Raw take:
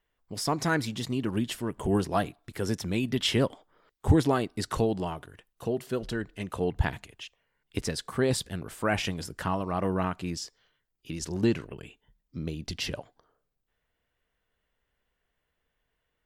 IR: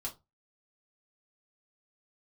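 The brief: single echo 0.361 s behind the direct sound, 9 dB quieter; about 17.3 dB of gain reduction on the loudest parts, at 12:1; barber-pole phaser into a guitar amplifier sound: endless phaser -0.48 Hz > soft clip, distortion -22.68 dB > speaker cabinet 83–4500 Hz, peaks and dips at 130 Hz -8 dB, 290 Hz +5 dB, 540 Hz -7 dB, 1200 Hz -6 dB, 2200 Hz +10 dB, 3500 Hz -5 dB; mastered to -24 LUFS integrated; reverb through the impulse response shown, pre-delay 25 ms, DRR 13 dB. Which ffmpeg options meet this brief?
-filter_complex "[0:a]acompressor=threshold=-34dB:ratio=12,aecho=1:1:361:0.355,asplit=2[a][b];[1:a]atrim=start_sample=2205,adelay=25[c];[b][c]afir=irnorm=-1:irlink=0,volume=-13dB[d];[a][d]amix=inputs=2:normalize=0,asplit=2[e][f];[f]afreqshift=-0.48[g];[e][g]amix=inputs=2:normalize=1,asoftclip=threshold=-29.5dB,highpass=83,equalizer=f=130:t=q:w=4:g=-8,equalizer=f=290:t=q:w=4:g=5,equalizer=f=540:t=q:w=4:g=-7,equalizer=f=1.2k:t=q:w=4:g=-6,equalizer=f=2.2k:t=q:w=4:g=10,equalizer=f=3.5k:t=q:w=4:g=-5,lowpass=f=4.5k:w=0.5412,lowpass=f=4.5k:w=1.3066,volume=20dB"

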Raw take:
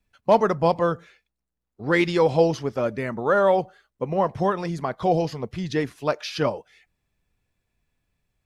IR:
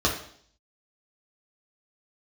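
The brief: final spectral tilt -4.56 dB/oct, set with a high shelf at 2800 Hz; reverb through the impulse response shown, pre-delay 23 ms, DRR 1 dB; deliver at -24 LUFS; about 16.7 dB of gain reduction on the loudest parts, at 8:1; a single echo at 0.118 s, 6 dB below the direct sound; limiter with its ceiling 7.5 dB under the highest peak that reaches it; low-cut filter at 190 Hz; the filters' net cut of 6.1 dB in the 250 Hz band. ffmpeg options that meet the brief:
-filter_complex "[0:a]highpass=190,equalizer=f=250:t=o:g=-8,highshelf=f=2.8k:g=7.5,acompressor=threshold=-31dB:ratio=8,alimiter=level_in=1dB:limit=-24dB:level=0:latency=1,volume=-1dB,aecho=1:1:118:0.501,asplit=2[a][b];[1:a]atrim=start_sample=2205,adelay=23[c];[b][c]afir=irnorm=-1:irlink=0,volume=-15dB[d];[a][d]amix=inputs=2:normalize=0,volume=9.5dB"

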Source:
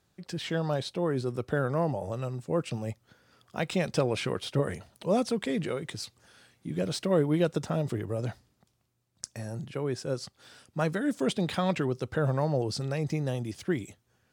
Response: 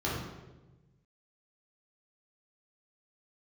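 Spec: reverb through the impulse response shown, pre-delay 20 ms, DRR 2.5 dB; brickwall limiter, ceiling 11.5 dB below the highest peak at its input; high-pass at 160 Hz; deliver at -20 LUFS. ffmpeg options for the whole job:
-filter_complex "[0:a]highpass=160,alimiter=limit=-24dB:level=0:latency=1,asplit=2[a][b];[1:a]atrim=start_sample=2205,adelay=20[c];[b][c]afir=irnorm=-1:irlink=0,volume=-11dB[d];[a][d]amix=inputs=2:normalize=0,volume=10.5dB"

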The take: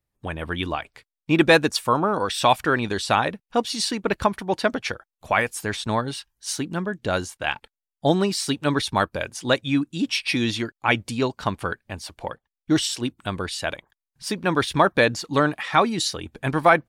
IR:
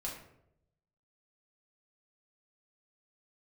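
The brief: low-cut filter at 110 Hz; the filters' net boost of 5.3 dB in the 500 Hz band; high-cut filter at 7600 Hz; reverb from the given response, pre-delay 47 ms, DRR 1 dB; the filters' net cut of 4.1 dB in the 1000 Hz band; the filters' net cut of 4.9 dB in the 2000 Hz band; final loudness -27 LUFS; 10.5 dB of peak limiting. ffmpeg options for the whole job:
-filter_complex "[0:a]highpass=110,lowpass=7.6k,equalizer=f=500:t=o:g=9,equalizer=f=1k:t=o:g=-8.5,equalizer=f=2k:t=o:g=-4,alimiter=limit=-11.5dB:level=0:latency=1,asplit=2[a][b];[1:a]atrim=start_sample=2205,adelay=47[c];[b][c]afir=irnorm=-1:irlink=0,volume=-1.5dB[d];[a][d]amix=inputs=2:normalize=0,volume=-4.5dB"

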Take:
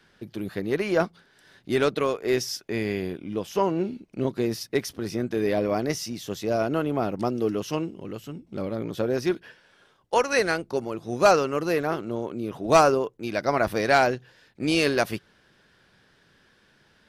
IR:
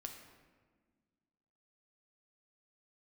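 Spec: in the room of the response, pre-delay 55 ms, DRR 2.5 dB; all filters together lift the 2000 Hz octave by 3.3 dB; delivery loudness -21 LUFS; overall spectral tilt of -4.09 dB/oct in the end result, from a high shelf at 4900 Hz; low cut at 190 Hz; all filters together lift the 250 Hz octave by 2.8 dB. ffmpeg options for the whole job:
-filter_complex "[0:a]highpass=190,equalizer=f=250:t=o:g=5,equalizer=f=2k:t=o:g=3.5,highshelf=f=4.9k:g=5.5,asplit=2[a][b];[1:a]atrim=start_sample=2205,adelay=55[c];[b][c]afir=irnorm=-1:irlink=0,volume=1dB[d];[a][d]amix=inputs=2:normalize=0,volume=1dB"

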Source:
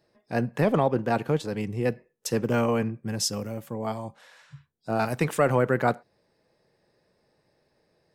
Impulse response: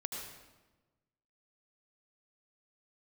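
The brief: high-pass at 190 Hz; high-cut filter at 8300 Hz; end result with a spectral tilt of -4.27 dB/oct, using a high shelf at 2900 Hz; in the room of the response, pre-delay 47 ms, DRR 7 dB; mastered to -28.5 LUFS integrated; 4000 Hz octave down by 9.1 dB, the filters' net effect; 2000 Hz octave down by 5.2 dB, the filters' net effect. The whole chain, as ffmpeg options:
-filter_complex "[0:a]highpass=190,lowpass=8.3k,equalizer=f=2k:t=o:g=-4.5,highshelf=f=2.9k:g=-3,equalizer=f=4k:t=o:g=-9,asplit=2[a][b];[1:a]atrim=start_sample=2205,adelay=47[c];[b][c]afir=irnorm=-1:irlink=0,volume=-7.5dB[d];[a][d]amix=inputs=2:normalize=0,volume=-0.5dB"

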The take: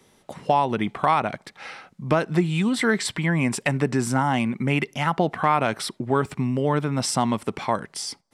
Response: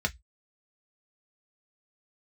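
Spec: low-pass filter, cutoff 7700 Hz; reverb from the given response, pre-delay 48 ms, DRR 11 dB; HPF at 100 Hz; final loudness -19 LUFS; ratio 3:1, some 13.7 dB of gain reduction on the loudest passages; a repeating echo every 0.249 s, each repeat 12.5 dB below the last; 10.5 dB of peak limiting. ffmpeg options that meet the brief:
-filter_complex "[0:a]highpass=100,lowpass=7.7k,acompressor=threshold=-34dB:ratio=3,alimiter=level_in=1.5dB:limit=-24dB:level=0:latency=1,volume=-1.5dB,aecho=1:1:249|498|747:0.237|0.0569|0.0137,asplit=2[a][b];[1:a]atrim=start_sample=2205,adelay=48[c];[b][c]afir=irnorm=-1:irlink=0,volume=-18.5dB[d];[a][d]amix=inputs=2:normalize=0,volume=17.5dB"

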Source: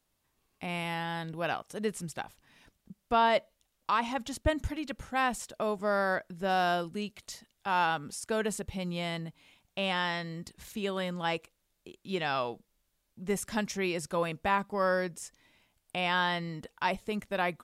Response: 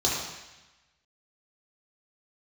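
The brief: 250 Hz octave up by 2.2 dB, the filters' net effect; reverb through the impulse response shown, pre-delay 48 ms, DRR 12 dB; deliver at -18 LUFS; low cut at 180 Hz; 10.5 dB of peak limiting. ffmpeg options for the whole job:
-filter_complex "[0:a]highpass=180,equalizer=f=250:t=o:g=5.5,alimiter=limit=-24dB:level=0:latency=1,asplit=2[a][b];[1:a]atrim=start_sample=2205,adelay=48[c];[b][c]afir=irnorm=-1:irlink=0,volume=-24dB[d];[a][d]amix=inputs=2:normalize=0,volume=17.5dB"

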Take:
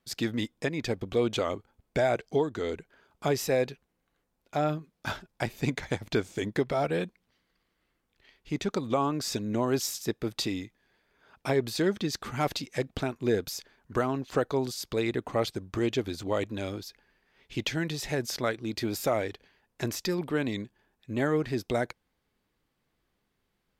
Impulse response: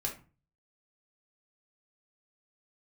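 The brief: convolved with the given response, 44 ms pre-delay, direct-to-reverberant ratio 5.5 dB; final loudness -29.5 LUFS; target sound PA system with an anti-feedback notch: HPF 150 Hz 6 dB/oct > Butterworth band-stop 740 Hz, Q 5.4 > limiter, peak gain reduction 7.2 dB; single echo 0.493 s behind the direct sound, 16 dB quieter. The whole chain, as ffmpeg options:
-filter_complex "[0:a]aecho=1:1:493:0.158,asplit=2[a][b];[1:a]atrim=start_sample=2205,adelay=44[c];[b][c]afir=irnorm=-1:irlink=0,volume=-8dB[d];[a][d]amix=inputs=2:normalize=0,highpass=f=150:p=1,asuperstop=centerf=740:order=8:qfactor=5.4,volume=3.5dB,alimiter=limit=-18dB:level=0:latency=1"

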